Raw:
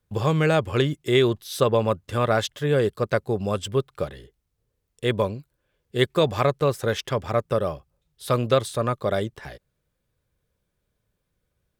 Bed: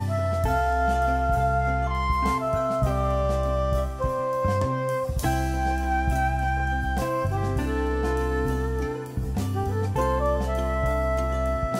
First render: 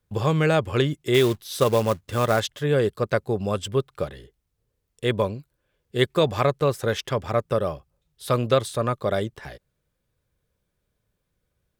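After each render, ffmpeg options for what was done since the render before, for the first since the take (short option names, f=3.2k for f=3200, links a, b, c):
-filter_complex "[0:a]asettb=1/sr,asplit=3[a][b][c];[a]atrim=end=1.144[d];[b]atrim=start=1.14:end=2.4,asetpts=PTS-STARTPTS,afade=t=in:d=0.004:c=qsin,afade=t=out:st=1.256:d=0.004:c=qsin,acrusher=bits=4:mode=log:mix=0:aa=0.000001[e];[c]atrim=start=2.396[f];[d][e]acrossfade=d=0.004:c1=hsin:c2=qsin[g];[g][f]acrossfade=d=0.004:c1=qsin:c2=hsin"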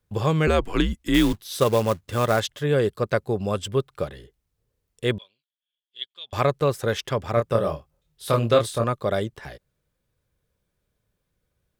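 -filter_complex "[0:a]asettb=1/sr,asplit=3[a][b][c];[a]atrim=end=0.474[d];[b]atrim=start=0.47:end=1.33,asetpts=PTS-STARTPTS,afade=t=in:d=0.004:c=qsin,afade=t=out:st=0.856:d=0.004:c=qsin,afreqshift=-88[e];[c]atrim=start=1.326[f];[d][e]acrossfade=d=0.004:c1=hsin:c2=qsin[g];[g][f]acrossfade=d=0.004:c1=qsin:c2=hsin,asettb=1/sr,asplit=3[h][i][j];[h]atrim=end=5.184[k];[i]atrim=start=5.18:end=6.33,asetpts=PTS-STARTPTS,afade=t=in:d=0.004:c=qsin,afade=t=out:st=1.146:d=0.004:c=qsin,bandpass=f=3.3k:t=q:w=12[l];[j]atrim=start=6.326[m];[k][l]acrossfade=d=0.004:c1=hsin:c2=qsin[n];[n][m]acrossfade=d=0.004:c1=qsin:c2=hsin,asettb=1/sr,asplit=3[o][p][q];[o]atrim=end=7.344[r];[p]atrim=start=7.34:end=8.84,asetpts=PTS-STARTPTS,afade=t=in:d=0.004:c=qsin,afade=t=out:st=1.496:d=0.004:c=qsin,asplit=2[s][t];[t]adelay=26,volume=-4.5dB[u];[s][u]amix=inputs=2:normalize=0,atrim=end_sample=66150[v];[q]atrim=start=8.836[w];[r][v]acrossfade=d=0.004:c1=hsin:c2=qsin[x];[x][w]acrossfade=d=0.004:c1=qsin:c2=hsin"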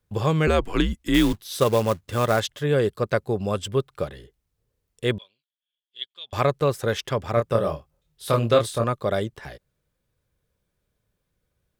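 -af anull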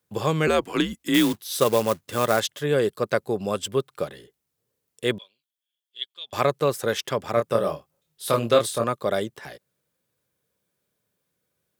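-af "highpass=170,highshelf=f=6.6k:g=7"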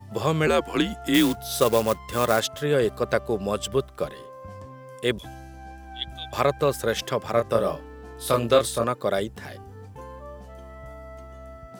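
-filter_complex "[1:a]volume=-17dB[a];[0:a][a]amix=inputs=2:normalize=0"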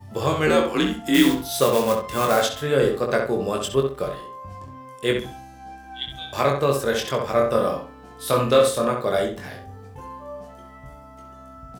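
-filter_complex "[0:a]asplit=2[a][b];[b]adelay=22,volume=-4dB[c];[a][c]amix=inputs=2:normalize=0,asplit=2[d][e];[e]adelay=65,lowpass=f=3.2k:p=1,volume=-4.5dB,asplit=2[f][g];[g]adelay=65,lowpass=f=3.2k:p=1,volume=0.28,asplit=2[h][i];[i]adelay=65,lowpass=f=3.2k:p=1,volume=0.28,asplit=2[j][k];[k]adelay=65,lowpass=f=3.2k:p=1,volume=0.28[l];[d][f][h][j][l]amix=inputs=5:normalize=0"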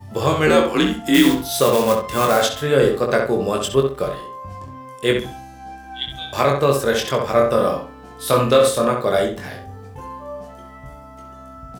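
-af "volume=4dB,alimiter=limit=-3dB:level=0:latency=1"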